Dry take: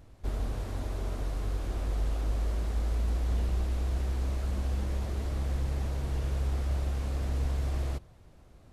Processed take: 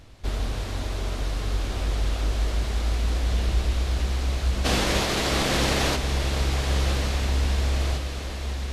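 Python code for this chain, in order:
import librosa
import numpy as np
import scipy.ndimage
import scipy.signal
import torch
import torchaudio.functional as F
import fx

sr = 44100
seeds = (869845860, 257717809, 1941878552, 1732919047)

y = fx.spec_clip(x, sr, under_db=23, at=(4.64, 5.95), fade=0.02)
y = fx.peak_eq(y, sr, hz=3700.0, db=10.0, octaves=2.4)
y = fx.echo_diffused(y, sr, ms=1219, feedback_pct=52, wet_db=-7.5)
y = F.gain(torch.from_numpy(y), 4.5).numpy()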